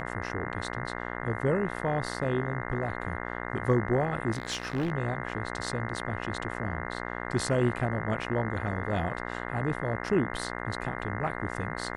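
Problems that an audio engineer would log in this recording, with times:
buzz 60 Hz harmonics 35 -36 dBFS
4.33–4.92 s: clipped -25.5 dBFS

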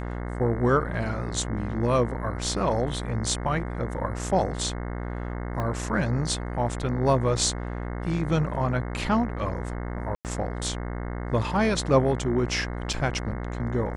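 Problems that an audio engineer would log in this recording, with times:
buzz 60 Hz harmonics 36 -32 dBFS
5.60 s: pop -18 dBFS
10.15–10.25 s: dropout 98 ms
12.93 s: dropout 4.6 ms

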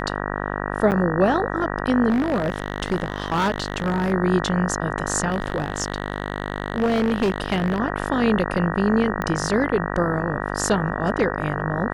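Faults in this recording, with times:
buzz 50 Hz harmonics 38 -27 dBFS
0.91–0.92 s: dropout 8.9 ms
2.09–4.13 s: clipped -17 dBFS
5.30–7.80 s: clipped -16 dBFS
9.22 s: pop -12 dBFS

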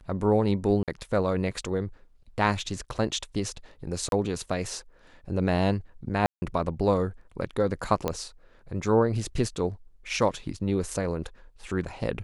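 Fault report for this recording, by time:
0.83–0.88 s: dropout 47 ms
4.09–4.12 s: dropout 32 ms
6.26–6.42 s: dropout 160 ms
8.08 s: pop -13 dBFS

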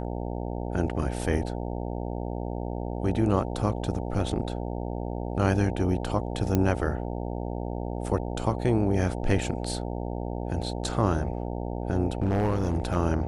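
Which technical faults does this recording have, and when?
buzz 60 Hz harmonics 15 -32 dBFS
6.55 s: pop -11 dBFS
12.13–12.97 s: clipped -20 dBFS

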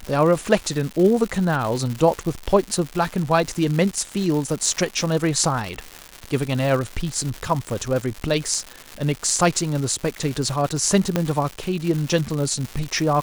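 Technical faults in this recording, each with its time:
crackle 270 per s -25 dBFS
11.16 s: pop -6 dBFS

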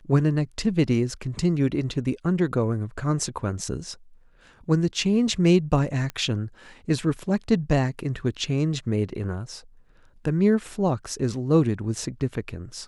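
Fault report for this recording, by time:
6.10 s: pop -18 dBFS

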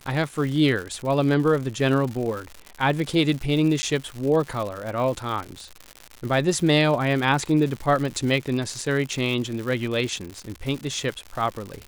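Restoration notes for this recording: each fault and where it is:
crackle 170 per s -29 dBFS
3.82–3.83 s: dropout 10 ms

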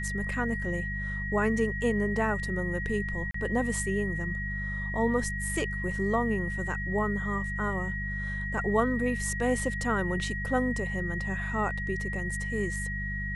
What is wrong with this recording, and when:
hum 50 Hz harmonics 4 -35 dBFS
whine 1.9 kHz -34 dBFS
3.31–3.34 s: dropout 34 ms

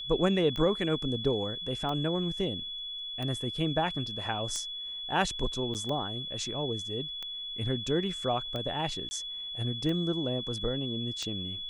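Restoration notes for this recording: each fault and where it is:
tick 45 rpm -23 dBFS
whine 3.4 kHz -36 dBFS
5.74–5.75 s: dropout 8.6 ms
9.09–9.11 s: dropout 20 ms

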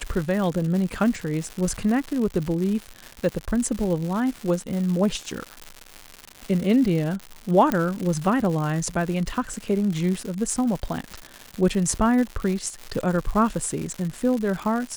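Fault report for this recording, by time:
crackle 230 per s -28 dBFS
7.72 s: pop -9 dBFS

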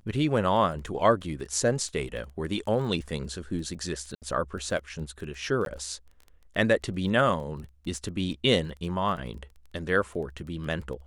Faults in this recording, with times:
crackle 12 per s -37 dBFS
4.15–4.22 s: dropout 68 ms
5.65–5.66 s: dropout 12 ms

